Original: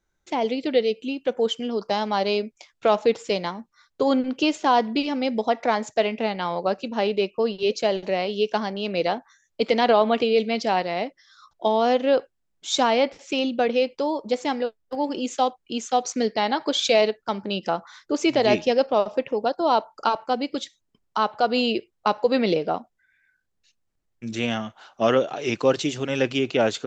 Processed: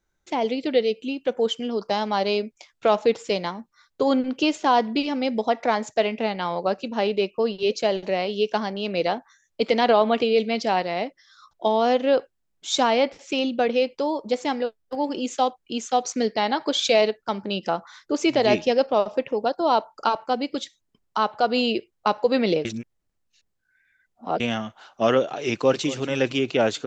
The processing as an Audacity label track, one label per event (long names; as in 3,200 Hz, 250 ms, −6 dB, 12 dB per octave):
22.650000	24.400000	reverse
25.440000	25.890000	delay throw 230 ms, feedback 50%, level −17 dB